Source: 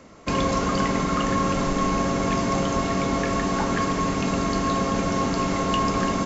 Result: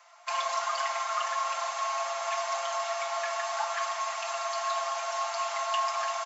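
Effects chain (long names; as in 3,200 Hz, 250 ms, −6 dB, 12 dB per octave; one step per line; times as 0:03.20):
Butterworth high-pass 630 Hz 96 dB per octave
comb filter 5.8 ms, depth 98%
level −6.5 dB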